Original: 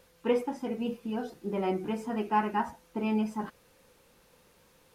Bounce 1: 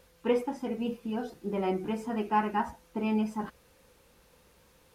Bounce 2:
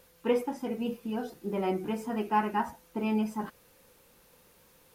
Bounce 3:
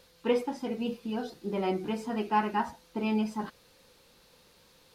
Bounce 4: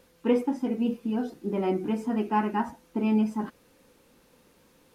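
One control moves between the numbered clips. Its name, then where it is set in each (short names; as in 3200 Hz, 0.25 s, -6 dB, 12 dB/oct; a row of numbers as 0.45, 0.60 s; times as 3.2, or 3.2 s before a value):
bell, frequency: 60, 15000, 4200, 270 Hz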